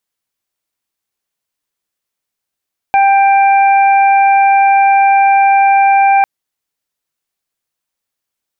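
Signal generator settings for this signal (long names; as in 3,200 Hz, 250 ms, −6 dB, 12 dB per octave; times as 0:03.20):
steady harmonic partials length 3.30 s, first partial 789 Hz, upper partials −15/−11 dB, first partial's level −6 dB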